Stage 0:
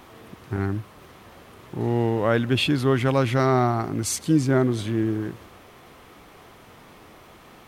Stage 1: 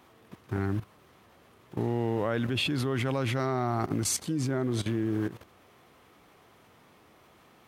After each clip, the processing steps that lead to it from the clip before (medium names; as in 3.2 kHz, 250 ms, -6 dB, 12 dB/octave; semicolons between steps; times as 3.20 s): level held to a coarse grid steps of 15 dB; high-pass 65 Hz; trim +1.5 dB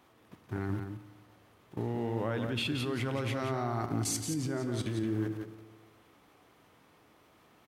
on a send: delay 174 ms -7 dB; on the sum: FDN reverb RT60 1.5 s, low-frequency decay 1×, high-frequency decay 0.75×, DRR 11.5 dB; trim -5 dB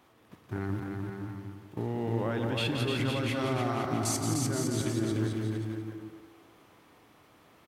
bouncing-ball echo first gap 300 ms, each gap 0.7×, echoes 5; trim +1 dB